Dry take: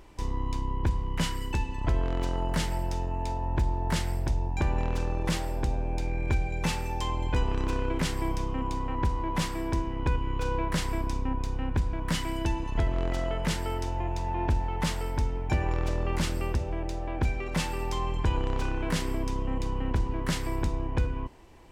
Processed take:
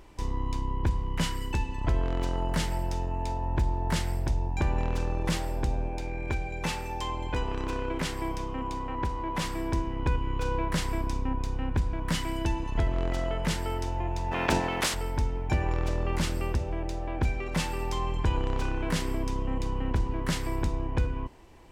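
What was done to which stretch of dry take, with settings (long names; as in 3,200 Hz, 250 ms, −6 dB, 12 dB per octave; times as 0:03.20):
0:05.88–0:09.45: bass and treble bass −5 dB, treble −2 dB
0:14.31–0:14.93: ceiling on every frequency bin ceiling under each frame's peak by 27 dB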